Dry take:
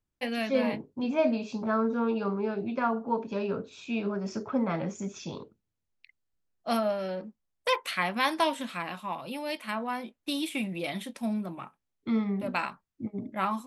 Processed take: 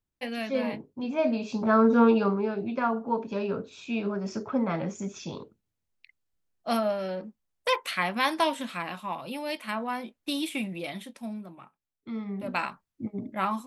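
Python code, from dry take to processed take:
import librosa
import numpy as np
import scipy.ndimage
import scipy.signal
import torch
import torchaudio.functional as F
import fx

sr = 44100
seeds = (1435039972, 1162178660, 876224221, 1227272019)

y = fx.gain(x, sr, db=fx.line((1.11, -2.0), (2.02, 9.5), (2.5, 1.0), (10.5, 1.0), (11.53, -8.0), (12.14, -8.0), (12.58, 1.0)))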